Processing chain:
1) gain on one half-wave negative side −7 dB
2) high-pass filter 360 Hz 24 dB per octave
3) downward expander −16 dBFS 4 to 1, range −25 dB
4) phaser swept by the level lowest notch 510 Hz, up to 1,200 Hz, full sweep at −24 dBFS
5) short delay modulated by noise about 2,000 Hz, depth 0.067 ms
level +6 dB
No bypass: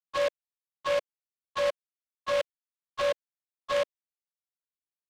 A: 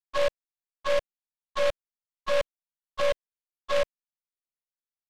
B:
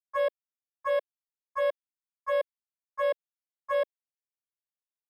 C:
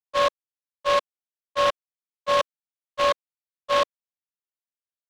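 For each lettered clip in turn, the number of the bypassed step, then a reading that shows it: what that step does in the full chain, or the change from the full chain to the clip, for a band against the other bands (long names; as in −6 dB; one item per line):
2, 125 Hz band +3.5 dB
5, 4 kHz band −9.0 dB
4, 1 kHz band +5.5 dB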